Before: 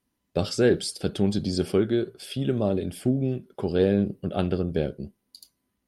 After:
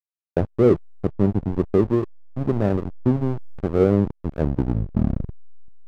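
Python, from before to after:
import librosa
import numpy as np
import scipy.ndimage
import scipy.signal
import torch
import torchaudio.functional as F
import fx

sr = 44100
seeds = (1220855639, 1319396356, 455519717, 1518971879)

y = fx.tape_stop_end(x, sr, length_s=1.76)
y = scipy.signal.sosfilt(scipy.signal.ellip(4, 1.0, 40, 890.0, 'lowpass', fs=sr, output='sos'), y)
y = fx.peak_eq(y, sr, hz=110.0, db=5.0, octaves=0.28)
y = fx.backlash(y, sr, play_db=-22.0)
y = y * 10.0 ** (5.5 / 20.0)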